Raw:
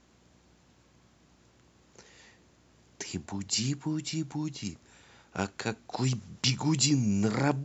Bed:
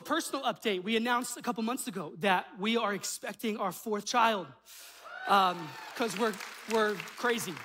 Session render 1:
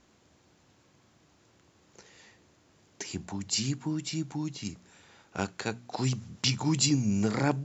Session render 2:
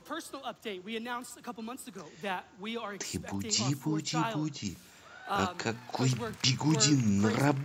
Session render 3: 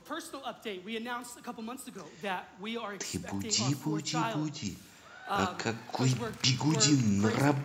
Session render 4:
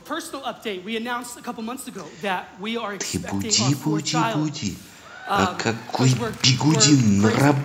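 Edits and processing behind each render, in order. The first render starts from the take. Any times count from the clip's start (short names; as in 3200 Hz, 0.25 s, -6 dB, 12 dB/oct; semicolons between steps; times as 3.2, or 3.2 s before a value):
de-hum 60 Hz, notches 4
add bed -8 dB
plate-style reverb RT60 0.82 s, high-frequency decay 0.85×, DRR 13 dB
gain +10 dB; limiter -2 dBFS, peak gain reduction 1 dB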